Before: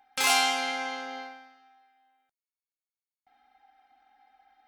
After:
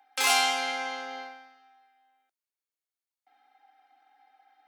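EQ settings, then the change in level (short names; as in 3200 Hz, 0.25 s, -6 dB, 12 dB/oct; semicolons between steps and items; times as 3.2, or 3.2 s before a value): steep high-pass 270 Hz 48 dB/oct; 0.0 dB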